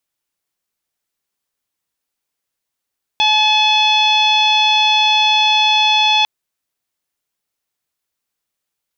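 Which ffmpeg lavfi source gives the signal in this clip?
-f lavfi -i "aevalsrc='0.178*sin(2*PI*857*t)+0.0237*sin(2*PI*1714*t)+0.141*sin(2*PI*2571*t)+0.211*sin(2*PI*3428*t)+0.0447*sin(2*PI*4285*t)+0.0282*sin(2*PI*5142*t)+0.0224*sin(2*PI*5999*t)':d=3.05:s=44100"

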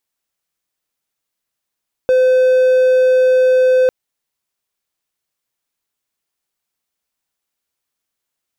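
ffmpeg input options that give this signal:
-f lavfi -i "aevalsrc='0.473*(1-4*abs(mod(512*t+0.25,1)-0.5))':d=1.8:s=44100"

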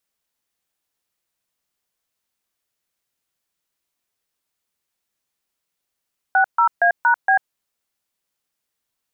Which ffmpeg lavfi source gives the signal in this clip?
-f lavfi -i "aevalsrc='0.188*clip(min(mod(t,0.233),0.093-mod(t,0.233))/0.002,0,1)*(eq(floor(t/0.233),0)*(sin(2*PI*770*mod(t,0.233))+sin(2*PI*1477*mod(t,0.233)))+eq(floor(t/0.233),1)*(sin(2*PI*941*mod(t,0.233))+sin(2*PI*1336*mod(t,0.233)))+eq(floor(t/0.233),2)*(sin(2*PI*697*mod(t,0.233))+sin(2*PI*1633*mod(t,0.233)))+eq(floor(t/0.233),3)*(sin(2*PI*941*mod(t,0.233))+sin(2*PI*1477*mod(t,0.233)))+eq(floor(t/0.233),4)*(sin(2*PI*770*mod(t,0.233))+sin(2*PI*1633*mod(t,0.233))))':d=1.165:s=44100"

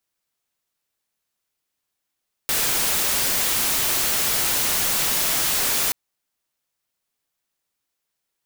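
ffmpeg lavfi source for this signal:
-f lavfi -i "anoisesrc=c=white:a=0.146:d=3.43:r=44100:seed=1"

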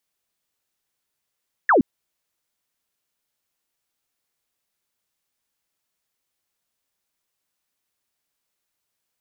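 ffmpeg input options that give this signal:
-f lavfi -i "aevalsrc='0.251*clip(t/0.002,0,1)*clip((0.12-t)/0.002,0,1)*sin(2*PI*1900*0.12/log(210/1900)*(exp(log(210/1900)*t/0.12)-1))':d=0.12:s=44100"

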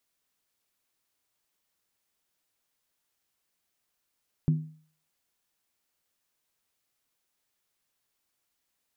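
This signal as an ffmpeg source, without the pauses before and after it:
-f lavfi -i "aevalsrc='0.133*pow(10,-3*t/0.47)*sin(2*PI*156*t)+0.0376*pow(10,-3*t/0.372)*sin(2*PI*248.7*t)+0.0106*pow(10,-3*t/0.322)*sin(2*PI*333.2*t)+0.00299*pow(10,-3*t/0.31)*sin(2*PI*358.2*t)+0.000841*pow(10,-3*t/0.289)*sin(2*PI*413.9*t)':d=0.63:s=44100"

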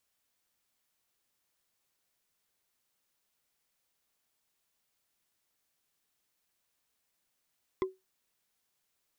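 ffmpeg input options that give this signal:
-f lavfi -i "aevalsrc='0.0668*pow(10,-3*t/0.2)*sin(2*PI*377*t)+0.0335*pow(10,-3*t/0.059)*sin(2*PI*1039.4*t)+0.0168*pow(10,-3*t/0.026)*sin(2*PI*2037.3*t)+0.00841*pow(10,-3*t/0.014)*sin(2*PI*3367.7*t)+0.00422*pow(10,-3*t/0.009)*sin(2*PI*5029.2*t)':d=0.45:s=44100"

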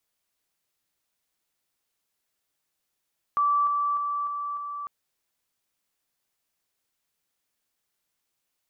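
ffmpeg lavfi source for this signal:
-f lavfi -i "aevalsrc='pow(10,(-19.5-3*floor(t/0.3))/20)*sin(2*PI*1160*t)':d=1.5:s=44100"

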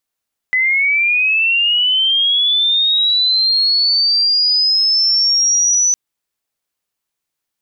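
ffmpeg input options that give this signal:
-f lavfi -i "aevalsrc='pow(10,(-11.5+1*t/5.41)/20)*sin(2*PI*(2000*t+4000*t*t/(2*5.41)))':d=5.41:s=44100"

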